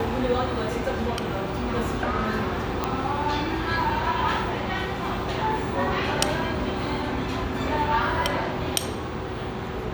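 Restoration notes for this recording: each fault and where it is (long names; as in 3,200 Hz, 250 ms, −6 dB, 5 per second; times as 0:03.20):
0:02.84: click −10 dBFS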